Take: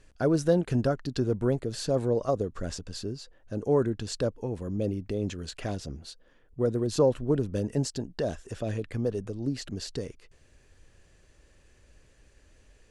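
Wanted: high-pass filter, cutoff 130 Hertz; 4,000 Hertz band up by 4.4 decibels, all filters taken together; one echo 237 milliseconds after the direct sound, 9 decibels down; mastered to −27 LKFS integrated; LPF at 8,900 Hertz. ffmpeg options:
ffmpeg -i in.wav -af "highpass=130,lowpass=8900,equalizer=frequency=4000:width_type=o:gain=5.5,aecho=1:1:237:0.355,volume=2.5dB" out.wav

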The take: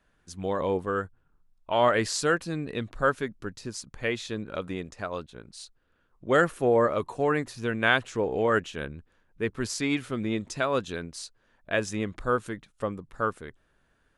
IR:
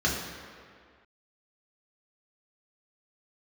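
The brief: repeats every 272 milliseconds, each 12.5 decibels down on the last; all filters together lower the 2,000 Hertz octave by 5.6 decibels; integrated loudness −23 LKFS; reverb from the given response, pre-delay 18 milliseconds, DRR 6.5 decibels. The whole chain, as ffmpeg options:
-filter_complex "[0:a]equalizer=frequency=2000:width_type=o:gain=-8,aecho=1:1:272|544|816:0.237|0.0569|0.0137,asplit=2[link_01][link_02];[1:a]atrim=start_sample=2205,adelay=18[link_03];[link_02][link_03]afir=irnorm=-1:irlink=0,volume=-18.5dB[link_04];[link_01][link_04]amix=inputs=2:normalize=0,volume=5dB"

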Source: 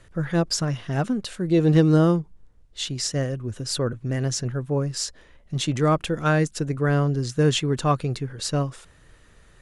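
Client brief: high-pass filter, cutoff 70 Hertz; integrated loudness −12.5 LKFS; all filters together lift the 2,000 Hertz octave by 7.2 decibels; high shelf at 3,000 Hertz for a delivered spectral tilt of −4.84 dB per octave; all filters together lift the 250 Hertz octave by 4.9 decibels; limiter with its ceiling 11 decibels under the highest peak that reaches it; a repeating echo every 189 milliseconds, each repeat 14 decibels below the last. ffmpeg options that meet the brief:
ffmpeg -i in.wav -af "highpass=70,equalizer=frequency=250:width_type=o:gain=7.5,equalizer=frequency=2000:width_type=o:gain=8.5,highshelf=frequency=3000:gain=3.5,alimiter=limit=-13dB:level=0:latency=1,aecho=1:1:189|378:0.2|0.0399,volume=11dB" out.wav

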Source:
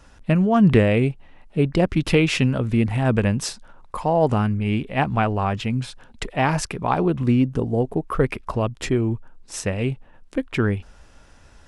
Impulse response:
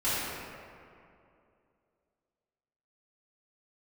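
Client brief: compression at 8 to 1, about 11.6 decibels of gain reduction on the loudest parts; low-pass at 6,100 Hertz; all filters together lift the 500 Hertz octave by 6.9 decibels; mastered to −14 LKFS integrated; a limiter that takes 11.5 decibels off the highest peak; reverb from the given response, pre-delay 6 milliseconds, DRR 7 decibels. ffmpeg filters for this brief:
-filter_complex "[0:a]lowpass=6100,equalizer=frequency=500:width_type=o:gain=8.5,acompressor=threshold=-19dB:ratio=8,alimiter=limit=-20.5dB:level=0:latency=1,asplit=2[link_01][link_02];[1:a]atrim=start_sample=2205,adelay=6[link_03];[link_02][link_03]afir=irnorm=-1:irlink=0,volume=-18.5dB[link_04];[link_01][link_04]amix=inputs=2:normalize=0,volume=15dB"

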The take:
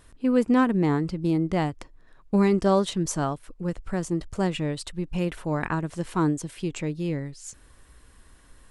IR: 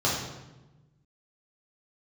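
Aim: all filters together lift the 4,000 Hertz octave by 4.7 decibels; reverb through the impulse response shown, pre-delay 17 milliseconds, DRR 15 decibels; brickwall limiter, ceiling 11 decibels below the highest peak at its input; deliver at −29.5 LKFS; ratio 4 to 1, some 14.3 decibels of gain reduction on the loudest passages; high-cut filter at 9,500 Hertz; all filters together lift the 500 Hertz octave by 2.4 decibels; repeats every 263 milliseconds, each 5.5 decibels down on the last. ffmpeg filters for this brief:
-filter_complex "[0:a]lowpass=9500,equalizer=frequency=500:width_type=o:gain=3,equalizer=frequency=4000:width_type=o:gain=6,acompressor=threshold=-32dB:ratio=4,alimiter=level_in=5.5dB:limit=-24dB:level=0:latency=1,volume=-5.5dB,aecho=1:1:263|526|789|1052|1315|1578|1841:0.531|0.281|0.149|0.079|0.0419|0.0222|0.0118,asplit=2[link_01][link_02];[1:a]atrim=start_sample=2205,adelay=17[link_03];[link_02][link_03]afir=irnorm=-1:irlink=0,volume=-28dB[link_04];[link_01][link_04]amix=inputs=2:normalize=0,volume=8dB"

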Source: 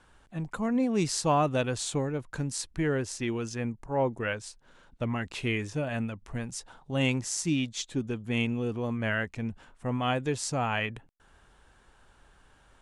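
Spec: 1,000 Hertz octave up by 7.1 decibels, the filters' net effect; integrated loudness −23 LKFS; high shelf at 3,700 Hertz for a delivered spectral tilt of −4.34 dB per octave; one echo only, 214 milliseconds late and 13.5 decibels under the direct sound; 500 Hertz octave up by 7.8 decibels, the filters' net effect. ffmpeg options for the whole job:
ffmpeg -i in.wav -af "equalizer=frequency=500:width_type=o:gain=7.5,equalizer=frequency=1000:width_type=o:gain=6,highshelf=frequency=3700:gain=6.5,aecho=1:1:214:0.211,volume=2.5dB" out.wav

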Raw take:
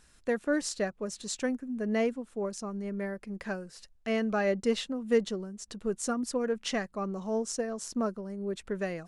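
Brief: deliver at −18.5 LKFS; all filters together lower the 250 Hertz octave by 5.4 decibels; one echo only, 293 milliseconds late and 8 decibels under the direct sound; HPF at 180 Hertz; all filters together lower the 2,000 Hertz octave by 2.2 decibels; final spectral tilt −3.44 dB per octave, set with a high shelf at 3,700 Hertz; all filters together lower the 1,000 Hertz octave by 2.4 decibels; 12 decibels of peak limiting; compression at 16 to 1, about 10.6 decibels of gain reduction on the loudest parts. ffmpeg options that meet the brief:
ffmpeg -i in.wav -af "highpass=180,equalizer=frequency=250:width_type=o:gain=-4.5,equalizer=frequency=1000:width_type=o:gain=-3,equalizer=frequency=2000:width_type=o:gain=-3.5,highshelf=frequency=3700:gain=7.5,acompressor=threshold=-32dB:ratio=16,alimiter=level_in=7.5dB:limit=-24dB:level=0:latency=1,volume=-7.5dB,aecho=1:1:293:0.398,volume=22dB" out.wav

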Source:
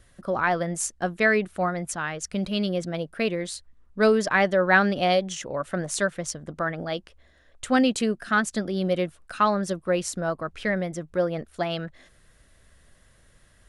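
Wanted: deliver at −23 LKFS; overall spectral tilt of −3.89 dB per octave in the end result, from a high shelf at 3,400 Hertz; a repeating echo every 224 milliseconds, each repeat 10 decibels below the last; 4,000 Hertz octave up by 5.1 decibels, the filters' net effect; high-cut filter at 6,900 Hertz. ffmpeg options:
ffmpeg -i in.wav -af "lowpass=6900,highshelf=frequency=3400:gain=4,equalizer=frequency=4000:width_type=o:gain=4.5,aecho=1:1:224|448|672|896:0.316|0.101|0.0324|0.0104,volume=1.5dB" out.wav

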